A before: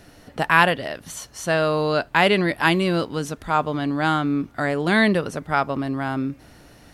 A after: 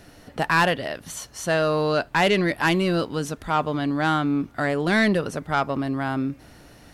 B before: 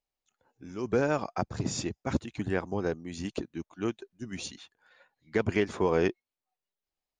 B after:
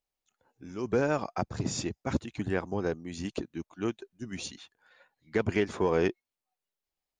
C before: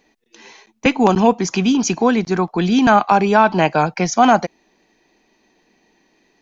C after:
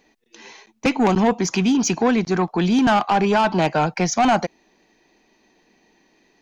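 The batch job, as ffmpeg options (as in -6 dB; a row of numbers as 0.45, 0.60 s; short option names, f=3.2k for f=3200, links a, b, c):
-af "asoftclip=type=tanh:threshold=-11.5dB"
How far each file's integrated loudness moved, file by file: -1.5, -0.5, -3.5 LU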